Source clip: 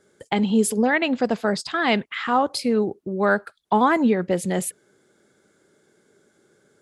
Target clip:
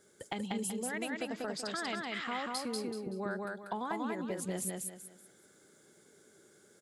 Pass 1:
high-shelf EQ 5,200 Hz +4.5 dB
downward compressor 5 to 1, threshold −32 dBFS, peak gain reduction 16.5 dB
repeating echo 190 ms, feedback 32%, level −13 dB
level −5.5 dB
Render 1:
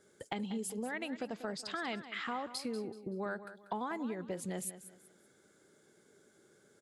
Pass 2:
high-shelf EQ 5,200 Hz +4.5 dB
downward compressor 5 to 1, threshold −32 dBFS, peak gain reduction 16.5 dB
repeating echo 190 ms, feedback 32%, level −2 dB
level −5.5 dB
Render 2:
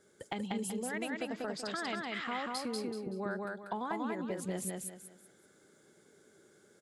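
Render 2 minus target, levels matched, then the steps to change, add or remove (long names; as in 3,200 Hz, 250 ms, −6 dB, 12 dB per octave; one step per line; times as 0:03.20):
8,000 Hz band −2.5 dB
change: high-shelf EQ 5,200 Hz +11 dB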